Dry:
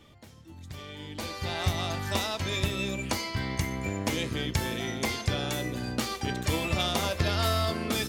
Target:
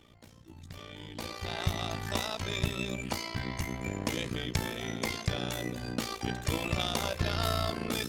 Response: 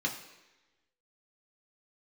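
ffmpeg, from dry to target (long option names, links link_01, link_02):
-af "tremolo=f=58:d=0.824"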